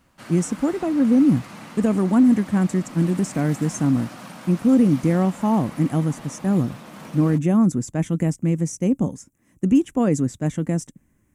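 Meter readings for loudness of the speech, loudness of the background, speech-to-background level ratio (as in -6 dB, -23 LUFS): -21.0 LUFS, -39.5 LUFS, 18.5 dB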